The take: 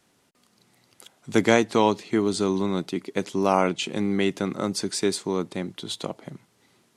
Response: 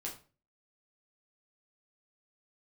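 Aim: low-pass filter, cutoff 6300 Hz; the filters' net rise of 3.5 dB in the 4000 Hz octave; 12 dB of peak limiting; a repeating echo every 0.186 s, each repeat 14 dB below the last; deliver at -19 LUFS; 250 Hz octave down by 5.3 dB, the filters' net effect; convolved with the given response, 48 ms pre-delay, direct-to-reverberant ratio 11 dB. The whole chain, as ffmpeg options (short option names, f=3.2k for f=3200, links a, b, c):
-filter_complex "[0:a]lowpass=6.3k,equalizer=f=250:t=o:g=-7.5,equalizer=f=4k:t=o:g=5,alimiter=limit=-15dB:level=0:latency=1,aecho=1:1:186|372:0.2|0.0399,asplit=2[a][b];[1:a]atrim=start_sample=2205,adelay=48[c];[b][c]afir=irnorm=-1:irlink=0,volume=-10dB[d];[a][d]amix=inputs=2:normalize=0,volume=10dB"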